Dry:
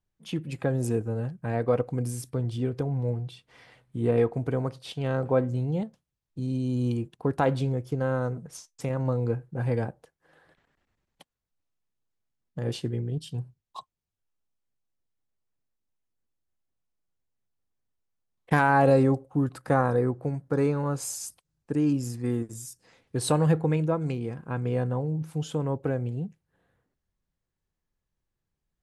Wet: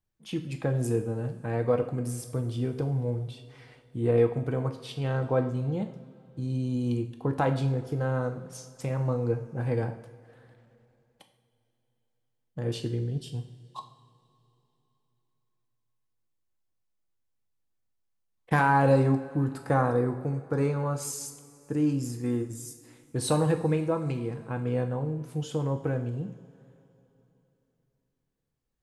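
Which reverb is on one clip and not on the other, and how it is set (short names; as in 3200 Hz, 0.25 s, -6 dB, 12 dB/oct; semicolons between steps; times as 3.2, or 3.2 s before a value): two-slope reverb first 0.59 s, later 3.4 s, from -18 dB, DRR 5.5 dB; gain -2 dB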